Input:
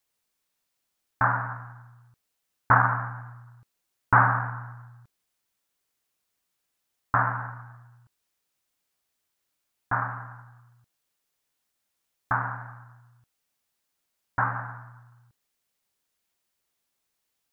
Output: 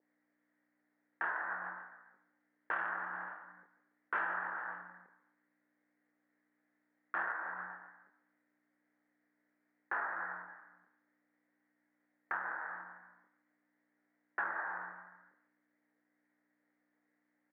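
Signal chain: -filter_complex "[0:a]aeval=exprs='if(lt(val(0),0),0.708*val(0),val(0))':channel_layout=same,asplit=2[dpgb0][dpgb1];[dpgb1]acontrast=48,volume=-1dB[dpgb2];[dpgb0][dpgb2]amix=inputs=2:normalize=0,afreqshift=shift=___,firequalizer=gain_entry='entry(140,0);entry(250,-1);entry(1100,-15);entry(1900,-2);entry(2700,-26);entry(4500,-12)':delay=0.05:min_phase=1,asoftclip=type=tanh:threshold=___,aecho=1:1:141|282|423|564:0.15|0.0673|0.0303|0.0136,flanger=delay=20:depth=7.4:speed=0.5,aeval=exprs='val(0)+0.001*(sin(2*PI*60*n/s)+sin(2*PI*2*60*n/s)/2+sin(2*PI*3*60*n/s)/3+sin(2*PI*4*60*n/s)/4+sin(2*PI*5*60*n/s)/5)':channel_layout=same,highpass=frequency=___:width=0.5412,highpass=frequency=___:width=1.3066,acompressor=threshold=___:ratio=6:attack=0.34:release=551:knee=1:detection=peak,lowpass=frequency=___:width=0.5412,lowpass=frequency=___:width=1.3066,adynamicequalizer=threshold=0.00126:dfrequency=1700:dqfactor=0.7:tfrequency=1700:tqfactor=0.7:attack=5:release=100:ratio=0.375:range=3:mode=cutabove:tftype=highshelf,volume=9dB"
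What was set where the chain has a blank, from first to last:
60, -12.5dB, 480, 480, -38dB, 2300, 2300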